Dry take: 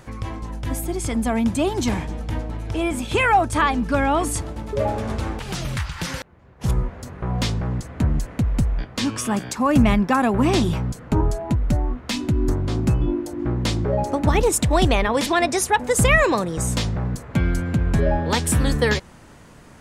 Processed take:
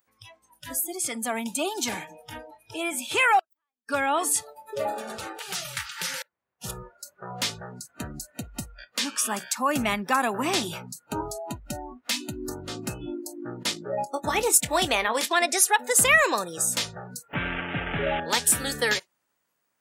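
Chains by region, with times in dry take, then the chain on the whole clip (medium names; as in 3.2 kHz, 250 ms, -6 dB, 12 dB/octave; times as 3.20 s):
3.39–3.89 s: median filter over 3 samples + inverted gate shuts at -17 dBFS, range -39 dB + transformer saturation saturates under 2.4 kHz
13.63–15.32 s: gate -23 dBFS, range -13 dB + doubling 23 ms -13 dB
17.33–18.20 s: one-bit delta coder 16 kbps, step -19.5 dBFS + bass shelf 110 Hz +8.5 dB + comb 6.9 ms, depth 36%
whole clip: spectral noise reduction 26 dB; high-pass 970 Hz 6 dB/octave; treble shelf 11 kHz +11.5 dB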